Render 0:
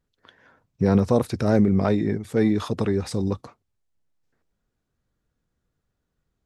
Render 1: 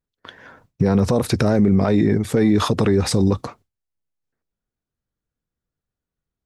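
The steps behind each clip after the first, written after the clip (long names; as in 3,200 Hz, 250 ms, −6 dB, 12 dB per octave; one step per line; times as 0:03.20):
noise gate with hold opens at −53 dBFS
boost into a limiter +18.5 dB
level −6.5 dB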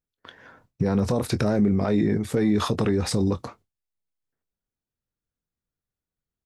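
double-tracking delay 24 ms −12.5 dB
level −5.5 dB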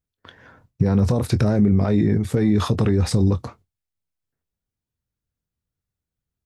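parametric band 84 Hz +9.5 dB 2 octaves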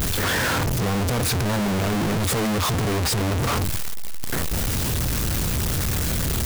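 sign of each sample alone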